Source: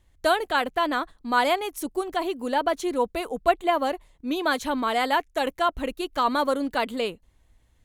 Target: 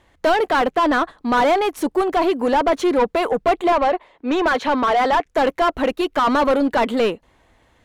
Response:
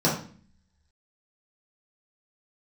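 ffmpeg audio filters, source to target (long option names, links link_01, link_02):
-filter_complex "[0:a]asettb=1/sr,asplit=3[link_01][link_02][link_03];[link_01]atrim=end=3.724[link_04];[link_02]atrim=start=3.72:end=5.26,asetpts=PTS-STARTPTS,afade=type=in:duration=0.004:curve=qsin,afade=type=out:start_time=1.536:duration=0.004:curve=qsin,acrossover=split=250 4600:gain=0.224 1 0.2[link_05][link_06][link_07];[link_05][link_06][link_07]amix=inputs=3:normalize=0[link_08];[link_03]atrim=start=5.256[link_09];[link_04][link_08]acrossfade=duration=0.004:curve1=hsin:curve2=qsin[link_10];[link_10][link_09]acrossfade=duration=0.004:curve1=qsin:curve2=hsin,asplit=2[link_11][link_12];[link_12]highpass=frequency=720:poles=1,volume=27dB,asoftclip=type=tanh:threshold=-7dB[link_13];[link_11][link_13]amix=inputs=2:normalize=0,lowpass=frequency=1100:poles=1,volume=-6dB"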